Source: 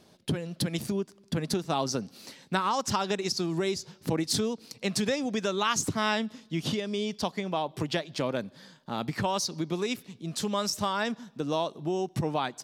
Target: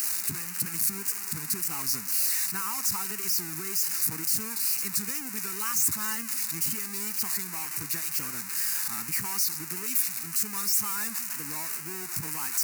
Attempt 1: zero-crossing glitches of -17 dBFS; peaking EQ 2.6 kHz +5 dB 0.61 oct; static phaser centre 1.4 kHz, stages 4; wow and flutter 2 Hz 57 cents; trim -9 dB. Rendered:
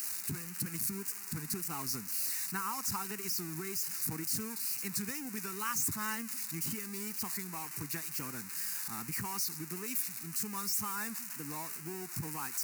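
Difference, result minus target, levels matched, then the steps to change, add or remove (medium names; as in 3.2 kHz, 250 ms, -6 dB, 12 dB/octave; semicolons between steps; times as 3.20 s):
zero-crossing glitches: distortion -8 dB
change: zero-crossing glitches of -8 dBFS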